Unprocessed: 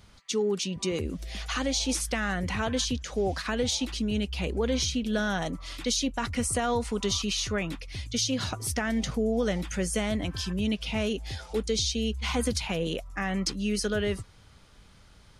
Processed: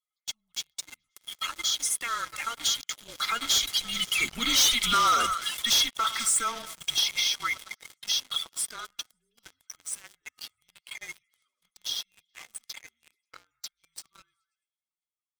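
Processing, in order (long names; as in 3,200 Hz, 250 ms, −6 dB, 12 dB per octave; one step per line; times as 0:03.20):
spectral magnitudes quantised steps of 30 dB
source passing by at 0:04.75, 17 m/s, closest 6.8 metres
first difference
frequency shifter −240 Hz
hollow resonant body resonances 1,300/2,100/3,300 Hz, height 18 dB, ringing for 30 ms
on a send: echo through a band-pass that steps 107 ms, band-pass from 910 Hz, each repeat 0.7 octaves, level −10 dB
on the sum: leveller curve on the samples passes 5
level +3 dB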